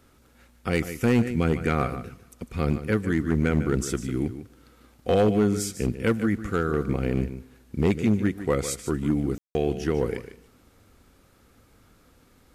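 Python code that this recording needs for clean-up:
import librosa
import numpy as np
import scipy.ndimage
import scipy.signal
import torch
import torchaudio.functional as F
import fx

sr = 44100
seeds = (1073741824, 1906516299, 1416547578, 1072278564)

y = fx.fix_declip(x, sr, threshold_db=-14.0)
y = fx.fix_ambience(y, sr, seeds[0], print_start_s=11.21, print_end_s=11.71, start_s=9.38, end_s=9.55)
y = fx.fix_echo_inverse(y, sr, delay_ms=150, level_db=-12.0)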